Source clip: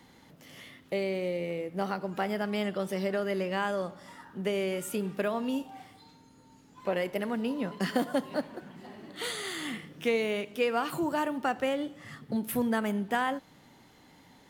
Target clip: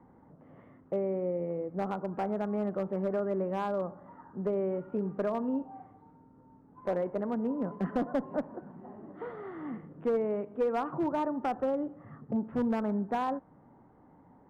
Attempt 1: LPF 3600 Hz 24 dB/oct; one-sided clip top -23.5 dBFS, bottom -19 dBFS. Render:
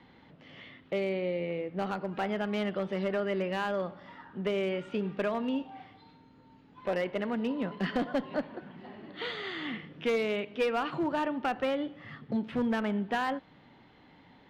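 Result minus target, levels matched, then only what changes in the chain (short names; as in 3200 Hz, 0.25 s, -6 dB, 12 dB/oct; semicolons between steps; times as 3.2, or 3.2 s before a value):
4000 Hz band +16.0 dB
change: LPF 1200 Hz 24 dB/oct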